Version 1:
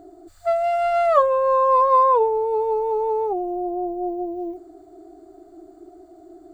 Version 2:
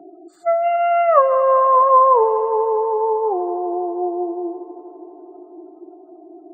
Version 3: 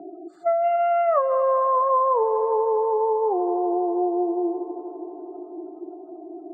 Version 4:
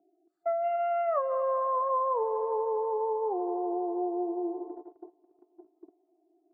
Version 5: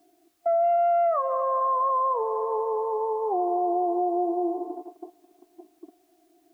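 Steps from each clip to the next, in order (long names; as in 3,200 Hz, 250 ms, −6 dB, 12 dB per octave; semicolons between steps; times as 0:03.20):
gate on every frequency bin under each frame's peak −30 dB strong; Chebyshev high-pass filter 150 Hz, order 10; echo machine with several playback heads 81 ms, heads second and third, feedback 75%, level −18 dB; level +3.5 dB
downward compressor 2.5 to 1, threshold −24 dBFS, peak gain reduction 11 dB; low-pass filter 1,300 Hz 6 dB per octave; level +3.5 dB
noise gate −32 dBFS, range −23 dB; level −8 dB
hollow resonant body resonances 250/710/1,100 Hz, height 11 dB, ringing for 25 ms; brickwall limiter −18 dBFS, peak gain reduction 6.5 dB; bit-depth reduction 12 bits, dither triangular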